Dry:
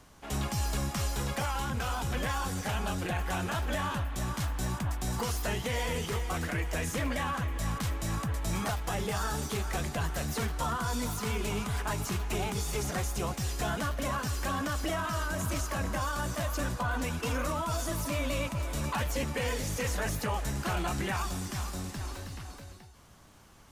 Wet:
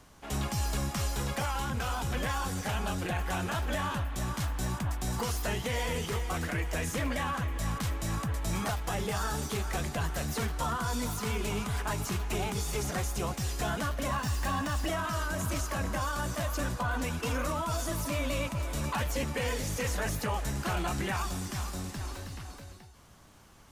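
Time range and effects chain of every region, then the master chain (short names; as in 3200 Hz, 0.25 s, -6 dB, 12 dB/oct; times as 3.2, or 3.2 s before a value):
14.11–14.87 self-modulated delay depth 0.052 ms + comb 1.1 ms, depth 40%
whole clip: dry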